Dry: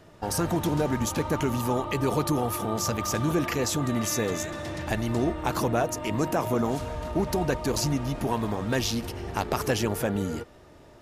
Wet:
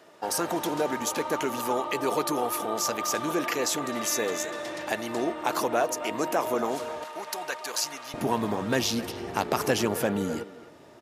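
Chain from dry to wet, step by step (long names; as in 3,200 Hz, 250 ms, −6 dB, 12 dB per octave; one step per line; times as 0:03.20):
high-pass filter 370 Hz 12 dB per octave, from 0:07.04 980 Hz, from 0:08.14 160 Hz
far-end echo of a speakerphone 260 ms, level −14 dB
level +1.5 dB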